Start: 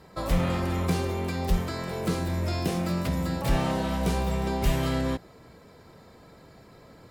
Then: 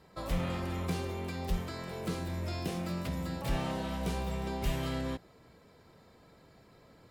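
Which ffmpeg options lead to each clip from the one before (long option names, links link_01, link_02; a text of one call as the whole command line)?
ffmpeg -i in.wav -af "equalizer=frequency=3000:width=1.5:gain=2.5,volume=-8dB" out.wav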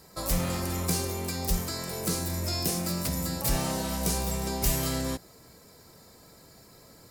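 ffmpeg -i in.wav -af "aexciter=amount=4.9:drive=5.9:freq=4600,volume=4dB" out.wav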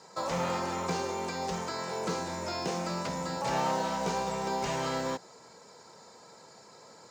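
ffmpeg -i in.wav -filter_complex "[0:a]highpass=210,equalizer=frequency=290:width_type=q:width=4:gain=-6,equalizer=frequency=490:width_type=q:width=4:gain=4,equalizer=frequency=900:width_type=q:width=4:gain=10,equalizer=frequency=1400:width_type=q:width=4:gain=4,equalizer=frequency=6700:width_type=q:width=4:gain=6,lowpass=frequency=7000:width=0.5412,lowpass=frequency=7000:width=1.3066,acrossover=split=3700[link_01][link_02];[link_02]acompressor=threshold=-46dB:ratio=4:attack=1:release=60[link_03];[link_01][link_03]amix=inputs=2:normalize=0,acrusher=bits=8:mode=log:mix=0:aa=0.000001" out.wav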